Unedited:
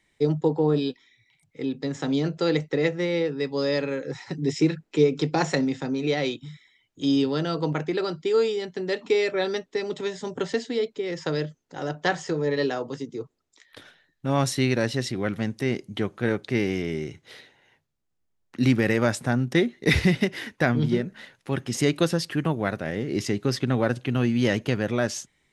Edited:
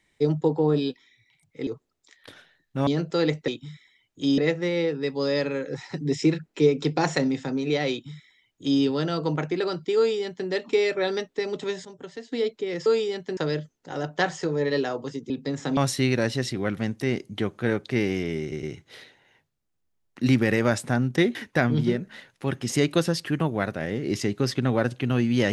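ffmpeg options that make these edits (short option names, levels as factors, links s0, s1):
-filter_complex "[0:a]asplit=14[s0][s1][s2][s3][s4][s5][s6][s7][s8][s9][s10][s11][s12][s13];[s0]atrim=end=1.672[s14];[s1]atrim=start=13.158:end=14.362[s15];[s2]atrim=start=2.138:end=2.752[s16];[s3]atrim=start=6.278:end=7.182[s17];[s4]atrim=start=2.748:end=10.222[s18];[s5]atrim=start=10.218:end=10.692,asetpts=PTS-STARTPTS,volume=0.251[s19];[s6]atrim=start=10.688:end=11.232[s20];[s7]atrim=start=8.338:end=8.852[s21];[s8]atrim=start=11.228:end=13.162[s22];[s9]atrim=start=1.668:end=2.142[s23];[s10]atrim=start=14.358:end=17.112[s24];[s11]atrim=start=16.998:end=17.112[s25];[s12]atrim=start=16.998:end=19.722[s26];[s13]atrim=start=20.398[s27];[s14][s15]acrossfade=d=0.004:c1=hsin:c2=hsin[s28];[s28][s16]acrossfade=d=0.004:c1=hsin:c2=hsin[s29];[s29][s17]acrossfade=d=0.004:c1=hsin:c2=hsin[s30];[s30][s18]acrossfade=d=0.004:c1=hsin:c2=hsin[s31];[s31][s19]acrossfade=d=0.004:c1=hsin:c2=hsin[s32];[s32][s20]acrossfade=d=0.004:c1=hsin:c2=hsin[s33];[s33][s21]acrossfade=d=0.004:c1=hsin:c2=hsin[s34];[s34][s22]acrossfade=d=0.004:c1=hsin:c2=hsin[s35];[s35][s23]acrossfade=d=0.004:c1=hsin:c2=hsin[s36];[s36][s24]acrossfade=d=0.004:c1=hsin:c2=hsin[s37];[s37][s25]acrossfade=d=0.004:c1=hsin:c2=hsin[s38];[s38][s26]acrossfade=d=0.004:c1=hsin:c2=hsin[s39];[s39][s27]acrossfade=d=0.004:c1=hsin:c2=hsin"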